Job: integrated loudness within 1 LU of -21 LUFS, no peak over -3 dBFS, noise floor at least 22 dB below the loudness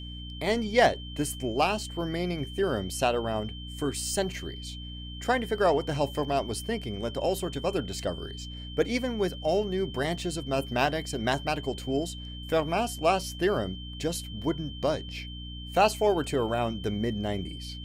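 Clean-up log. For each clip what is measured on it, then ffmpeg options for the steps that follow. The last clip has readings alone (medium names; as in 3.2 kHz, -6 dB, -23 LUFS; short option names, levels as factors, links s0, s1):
hum 60 Hz; highest harmonic 300 Hz; hum level -38 dBFS; steady tone 3.1 kHz; tone level -43 dBFS; loudness -29.0 LUFS; peak level -10.0 dBFS; loudness target -21.0 LUFS
-> -af "bandreject=f=60:t=h:w=4,bandreject=f=120:t=h:w=4,bandreject=f=180:t=h:w=4,bandreject=f=240:t=h:w=4,bandreject=f=300:t=h:w=4"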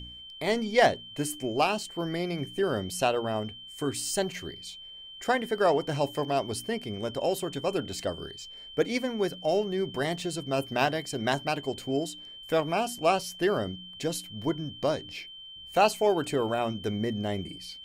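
hum not found; steady tone 3.1 kHz; tone level -43 dBFS
-> -af "bandreject=f=3100:w=30"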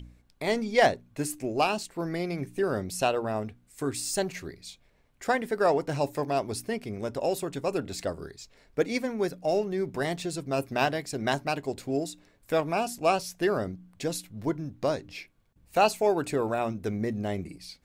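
steady tone not found; loudness -29.5 LUFS; peak level -10.0 dBFS; loudness target -21.0 LUFS
-> -af "volume=2.66,alimiter=limit=0.708:level=0:latency=1"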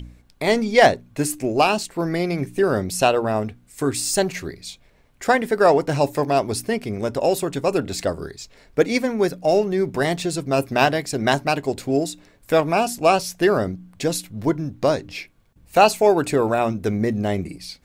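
loudness -21.0 LUFS; peak level -3.0 dBFS; noise floor -55 dBFS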